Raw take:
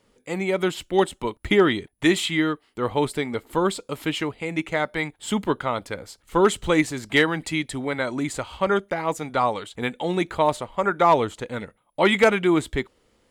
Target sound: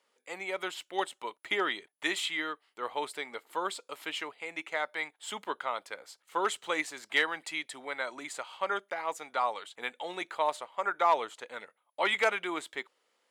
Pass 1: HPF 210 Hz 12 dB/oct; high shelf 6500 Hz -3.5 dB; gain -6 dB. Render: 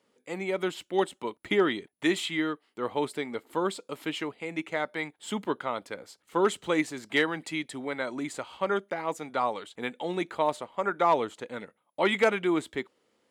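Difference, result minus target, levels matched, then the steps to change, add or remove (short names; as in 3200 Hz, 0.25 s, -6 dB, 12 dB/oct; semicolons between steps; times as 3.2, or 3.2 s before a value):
250 Hz band +9.5 dB
change: HPF 690 Hz 12 dB/oct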